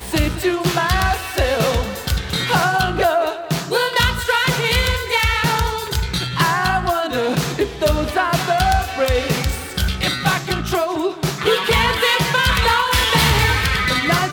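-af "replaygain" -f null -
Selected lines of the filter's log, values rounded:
track_gain = -1.4 dB
track_peak = 0.581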